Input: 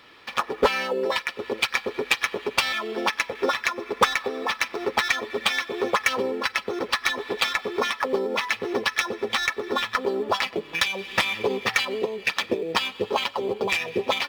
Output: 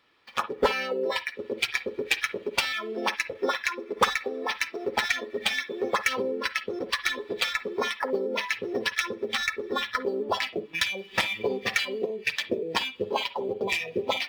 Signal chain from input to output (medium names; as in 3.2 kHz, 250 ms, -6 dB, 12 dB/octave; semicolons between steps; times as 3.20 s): spectral noise reduction 12 dB; on a send: reverberation, pre-delay 49 ms, DRR 14 dB; on the sum: trim -3 dB